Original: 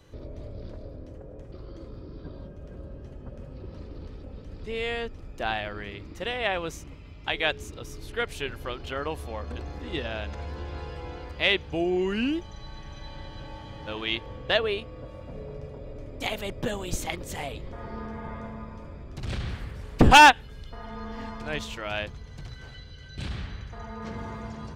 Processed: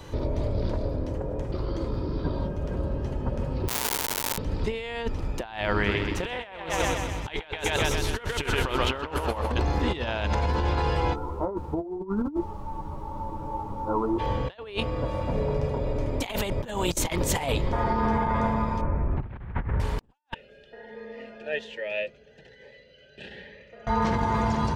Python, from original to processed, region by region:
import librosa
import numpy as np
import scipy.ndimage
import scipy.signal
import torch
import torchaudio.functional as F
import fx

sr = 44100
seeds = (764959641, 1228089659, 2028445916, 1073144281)

y = fx.chain(x, sr, fx.small_body(hz=(430.0, 2900.0), ring_ms=50, db=10),
    fx.schmitt(flips_db=-43.5),
    fx.tilt_eq(slope=4.5), at=(3.68, 4.38))
y = fx.chain(y, sr, fx.echo_thinned(ms=127, feedback_pct=54, hz=200.0, wet_db=-5.5),
    fx.doppler_dist(depth_ms=0.18), at=(5.74, 9.52))
y = fx.cheby_ripple(y, sr, hz=1400.0, ripple_db=6, at=(11.13, 14.18), fade=0.02)
y = fx.dmg_noise_colour(y, sr, seeds[0], colour='brown', level_db=-53.0, at=(11.13, 14.18), fade=0.02)
y = fx.ensemble(y, sr, at=(11.13, 14.18), fade=0.02)
y = fx.chain(y, sr, fx.lowpass(hz=2000.0, slope=24),
    fx.low_shelf(hz=76.0, db=7.0), at=(18.81, 19.8))
y = fx.chain(y, sr, fx.vowel_filter(vowel='e'),
    fx.comb(ms=4.9, depth=0.44),
    fx.notch_cascade(direction='rising', hz=1.2), at=(20.34, 23.87))
y = fx.peak_eq(y, sr, hz=920.0, db=9.5, octaves=0.26)
y = fx.over_compress(y, sr, threshold_db=-35.0, ratio=-0.5)
y = y * librosa.db_to_amplitude(5.0)